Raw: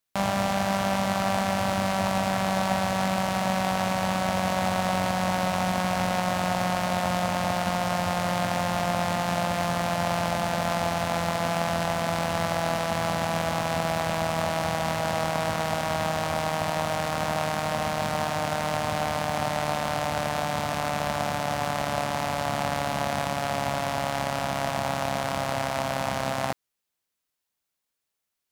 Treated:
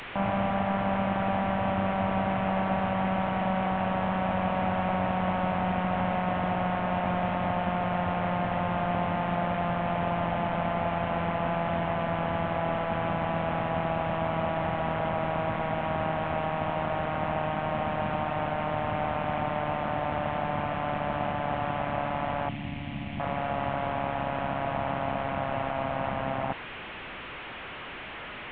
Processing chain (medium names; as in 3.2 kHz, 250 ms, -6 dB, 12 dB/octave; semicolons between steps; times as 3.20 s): one-bit delta coder 16 kbps, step -33 dBFS; 22.49–23.20 s: high-order bell 800 Hz -15 dB 2.3 oct